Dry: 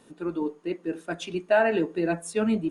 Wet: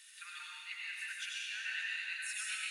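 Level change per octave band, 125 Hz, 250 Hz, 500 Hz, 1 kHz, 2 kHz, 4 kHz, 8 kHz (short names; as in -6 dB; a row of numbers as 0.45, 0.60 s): under -40 dB, under -40 dB, under -40 dB, -22.5 dB, -5.0 dB, +1.5 dB, -0.5 dB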